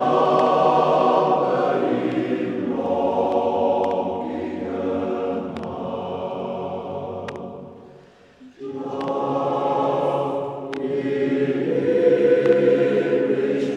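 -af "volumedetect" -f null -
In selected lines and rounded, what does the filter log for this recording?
mean_volume: -21.2 dB
max_volume: -4.5 dB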